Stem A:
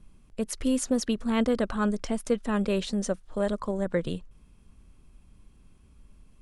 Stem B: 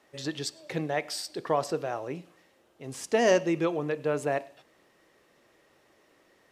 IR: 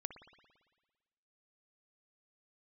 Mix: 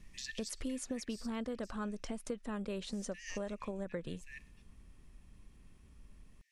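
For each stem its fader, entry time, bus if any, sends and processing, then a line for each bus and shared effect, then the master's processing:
−3.0 dB, 0.00 s, no send, no processing
+1.5 dB, 0.00 s, no send, Chebyshev high-pass with heavy ripple 1,700 Hz, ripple 6 dB; automatic ducking −10 dB, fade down 1.25 s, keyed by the first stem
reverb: not used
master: downward compressor 4 to 1, threshold −38 dBFS, peak gain reduction 13 dB

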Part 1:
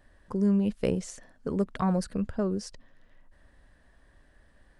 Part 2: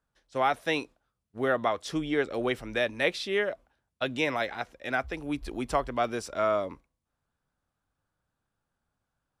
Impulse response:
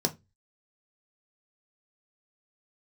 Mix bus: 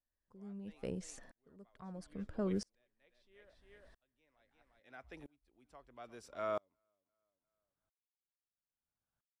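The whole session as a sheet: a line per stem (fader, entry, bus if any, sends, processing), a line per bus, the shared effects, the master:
−2.5 dB, 0.00 s, no send, no echo send, no processing
−9.0 dB, 0.00 s, no send, echo send −21.5 dB, automatic ducking −13 dB, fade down 0.30 s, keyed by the first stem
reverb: not used
echo: repeating echo 352 ms, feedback 23%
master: tremolo with a ramp in dB swelling 0.76 Hz, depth 36 dB

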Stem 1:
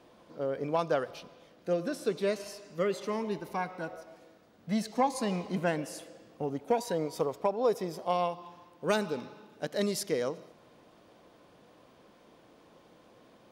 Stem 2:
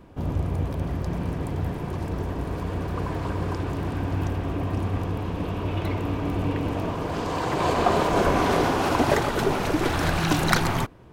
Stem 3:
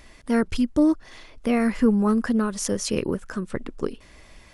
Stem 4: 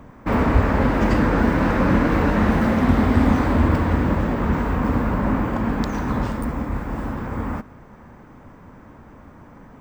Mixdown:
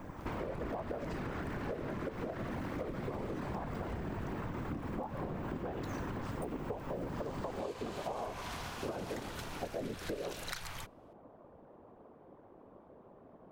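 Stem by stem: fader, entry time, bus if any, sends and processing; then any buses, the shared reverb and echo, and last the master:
+2.5 dB, 0.00 s, bus A, no send, Chebyshev low-pass filter 870 Hz, order 2
−10.5 dB, 0.00 s, no bus, no send, guitar amp tone stack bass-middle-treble 10-0-10
muted
−3.0 dB, 0.00 s, bus A, no send, high-shelf EQ 5,500 Hz +5.5 dB; downward compressor 2.5 to 1, threshold −24 dBFS, peak gain reduction 9.5 dB; soft clipping −25 dBFS, distortion −11 dB
bus A: 0.0 dB, random phases in short frames; downward compressor, threshold −27 dBFS, peak gain reduction 9 dB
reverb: not used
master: downward compressor, threshold −36 dBFS, peak gain reduction 11 dB

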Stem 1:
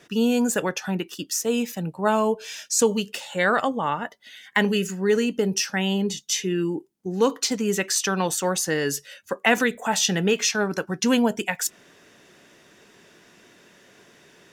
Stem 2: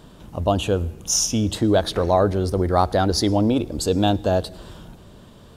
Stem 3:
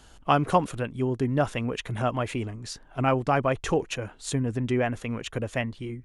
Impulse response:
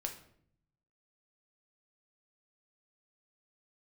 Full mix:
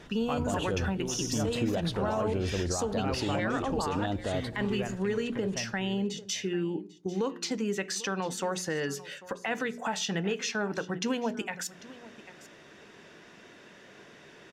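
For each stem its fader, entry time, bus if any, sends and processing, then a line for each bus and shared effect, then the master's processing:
+1.0 dB, 0.00 s, send −14.5 dB, echo send −18 dB, high-shelf EQ 7,900 Hz −8.5 dB; mains-hum notches 60/120/180/240/300/360/420 Hz; downward compressor 3 to 1, threshold −32 dBFS, peak gain reduction 13 dB
−7.5 dB, 0.00 s, no send, no echo send, brickwall limiter −15 dBFS, peak gain reduction 11 dB
−13.5 dB, 0.00 s, send −5.5 dB, echo send −17 dB, no processing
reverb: on, RT60 0.65 s, pre-delay 6 ms
echo: single-tap delay 794 ms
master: high-shelf EQ 7,700 Hz −9.5 dB; brickwall limiter −20.5 dBFS, peak gain reduction 9 dB

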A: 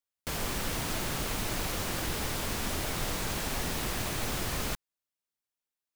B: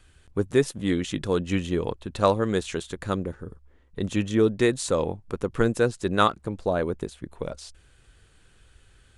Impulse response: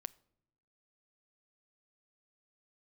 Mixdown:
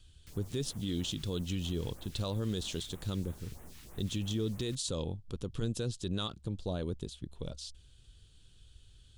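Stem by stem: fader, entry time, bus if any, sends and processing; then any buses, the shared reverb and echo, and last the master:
−12.5 dB, 0.00 s, no send, all-pass phaser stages 2, 3.1 Hz, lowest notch 490–4,400 Hz; automatic ducking −7 dB, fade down 0.20 s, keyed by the second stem
−1.0 dB, 0.00 s, no send, drawn EQ curve 110 Hz 0 dB, 650 Hz −13 dB, 2,100 Hz −16 dB, 3,300 Hz +3 dB, 9,800 Hz −5 dB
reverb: not used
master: brickwall limiter −24 dBFS, peak gain reduction 10.5 dB

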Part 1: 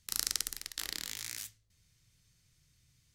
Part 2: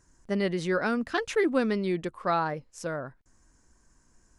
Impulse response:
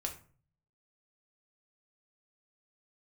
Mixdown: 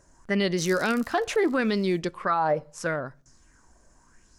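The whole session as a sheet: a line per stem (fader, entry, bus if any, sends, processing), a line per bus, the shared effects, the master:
0:01.14 −6 dB → 0:01.64 −17 dB, 0.50 s, no send, micro pitch shift up and down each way 42 cents
+2.5 dB, 0.00 s, send −17 dB, auto-filter bell 0.78 Hz 590–6,100 Hz +12 dB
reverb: on, RT60 0.45 s, pre-delay 5 ms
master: brickwall limiter −15.5 dBFS, peak gain reduction 10 dB

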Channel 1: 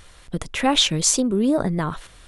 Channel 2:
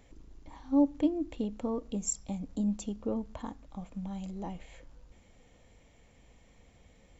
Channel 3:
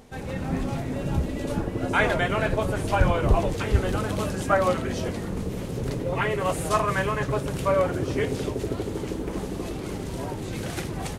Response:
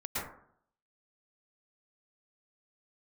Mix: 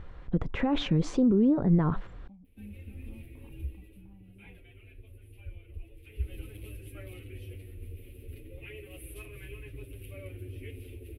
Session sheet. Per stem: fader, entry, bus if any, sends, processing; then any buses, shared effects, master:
−1.0 dB, 0.00 s, bus A, no send, no processing
−20.0 dB, 0.00 s, bus A, no send, parametric band 440 Hz −8.5 dB 1.3 octaves
0:03.62 −12.5 dB → 0:04.06 −23.5 dB → 0:05.90 −23.5 dB → 0:06.34 −11.5 dB, 2.45 s, no bus, no send, drawn EQ curve 100 Hz 0 dB, 170 Hz −27 dB, 320 Hz −6 dB, 510 Hz −12 dB, 970 Hz −28 dB, 1,700 Hz −10 dB, 2,500 Hz +10 dB, 4,600 Hz −11 dB, 6,800 Hz −17 dB, 11,000 Hz +13 dB; barber-pole flanger 8.4 ms −0.37 Hz
bus A: 0.0 dB, low-pass filter 2,000 Hz 12 dB per octave; brickwall limiter −20.5 dBFS, peak gain reduction 12 dB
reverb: not used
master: tilt shelving filter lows +6 dB, about 750 Hz; notch filter 630 Hz, Q 12

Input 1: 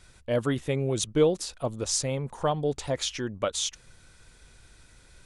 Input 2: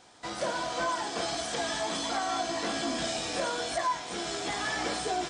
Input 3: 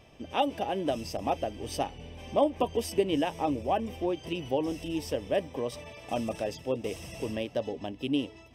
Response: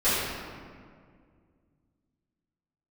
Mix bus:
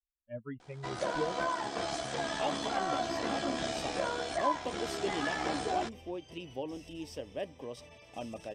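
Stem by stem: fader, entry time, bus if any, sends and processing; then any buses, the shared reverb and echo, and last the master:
−11.0 dB, 0.00 s, no send, spectral dynamics exaggerated over time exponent 3
+0.5 dB, 0.60 s, no send, amplitude modulation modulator 70 Hz, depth 35%
−10.0 dB, 2.05 s, no send, parametric band 6,300 Hz +9.5 dB 2.1 octaves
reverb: not used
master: high-shelf EQ 4,000 Hz −9 dB

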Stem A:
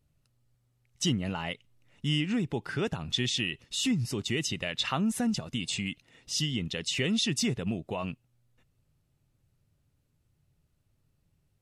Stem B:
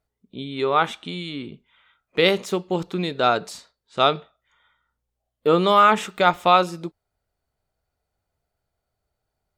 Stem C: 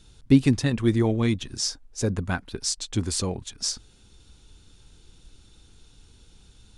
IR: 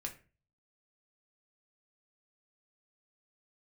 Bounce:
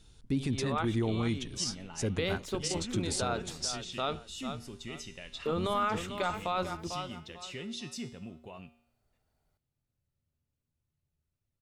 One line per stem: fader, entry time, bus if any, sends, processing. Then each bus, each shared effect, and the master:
−4.0 dB, 0.55 s, no send, no echo send, tuned comb filter 79 Hz, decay 0.67 s, harmonics odd, mix 70%
−0.5 dB, 0.00 s, no send, echo send −23 dB, sub-octave generator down 1 octave, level −4 dB; automatic ducking −10 dB, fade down 0.30 s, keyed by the third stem
−2.5 dB, 0.00 s, no send, no echo send, tuned comb filter 470 Hz, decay 0.43 s, mix 30%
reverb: not used
echo: repeating echo 446 ms, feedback 27%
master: brickwall limiter −22 dBFS, peak gain reduction 10 dB

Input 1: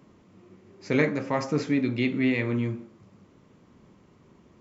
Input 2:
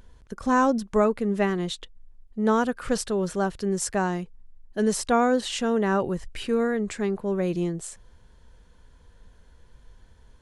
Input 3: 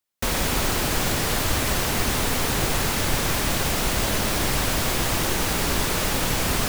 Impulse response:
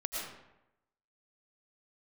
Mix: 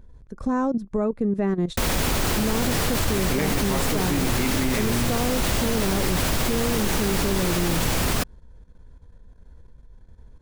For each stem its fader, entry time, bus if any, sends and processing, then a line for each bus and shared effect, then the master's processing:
+2.0 dB, 2.40 s, no send, no processing
+1.0 dB, 0.00 s, no send, tilt shelving filter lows +5 dB, about 910 Hz; notch filter 3,000 Hz, Q 7.7; downward compressor 4 to 1, threshold −20 dBFS, peak gain reduction 6.5 dB
+2.0 dB, 1.55 s, no send, no processing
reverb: not used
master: output level in coarse steps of 12 dB; low-shelf EQ 400 Hz +3.5 dB

